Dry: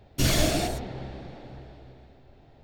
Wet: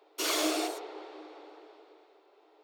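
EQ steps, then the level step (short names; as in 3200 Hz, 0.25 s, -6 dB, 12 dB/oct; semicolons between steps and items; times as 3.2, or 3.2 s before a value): rippled Chebyshev high-pass 300 Hz, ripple 9 dB; low shelf 450 Hz -4.5 dB; bell 1700 Hz -8 dB 0.41 oct; +5.0 dB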